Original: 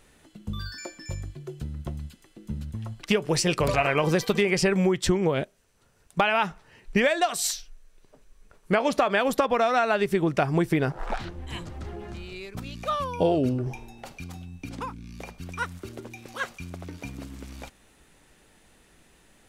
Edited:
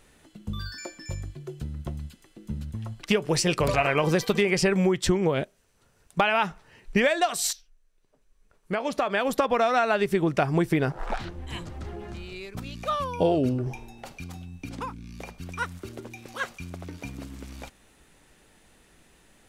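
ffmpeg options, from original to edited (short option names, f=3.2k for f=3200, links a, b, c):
-filter_complex "[0:a]asplit=2[a][b];[a]atrim=end=7.53,asetpts=PTS-STARTPTS,afade=t=out:st=7.526:d=0.004:c=hsin:silence=0.211349[c];[b]atrim=start=7.53,asetpts=PTS-STARTPTS,afade=t=in:d=1.97:c=qua:silence=0.211349[d];[c][d]concat=n=2:v=0:a=1"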